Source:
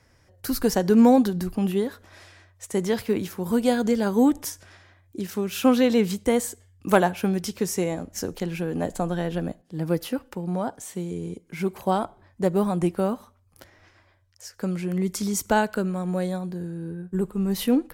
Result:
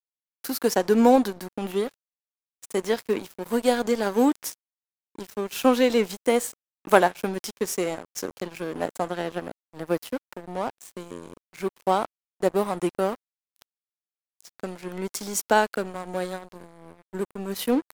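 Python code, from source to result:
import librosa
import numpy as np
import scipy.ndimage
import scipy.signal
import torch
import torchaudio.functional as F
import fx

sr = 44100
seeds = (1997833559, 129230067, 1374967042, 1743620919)

y = scipy.signal.sosfilt(scipy.signal.butter(2, 310.0, 'highpass', fs=sr, output='sos'), x)
y = np.sign(y) * np.maximum(np.abs(y) - 10.0 ** (-37.0 / 20.0), 0.0)
y = y * 10.0 ** (3.0 / 20.0)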